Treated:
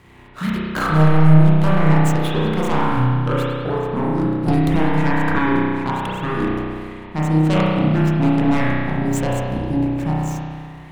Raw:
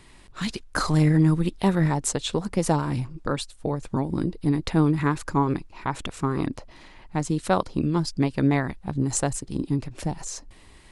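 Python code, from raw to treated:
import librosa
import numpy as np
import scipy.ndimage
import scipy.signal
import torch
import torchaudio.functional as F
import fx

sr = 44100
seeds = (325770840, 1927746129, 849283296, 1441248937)

y = scipy.ndimage.median_filter(x, 9, mode='constant')
y = scipy.signal.sosfilt(scipy.signal.butter(2, 47.0, 'highpass', fs=sr, output='sos'), y)
y = fx.fold_sine(y, sr, drive_db=10, ceiling_db=-8.0)
y = fx.rev_spring(y, sr, rt60_s=2.0, pass_ms=(32,), chirp_ms=75, drr_db=-6.5)
y = fx.band_squash(y, sr, depth_pct=100, at=(4.48, 5.39))
y = F.gain(torch.from_numpy(y), -10.5).numpy()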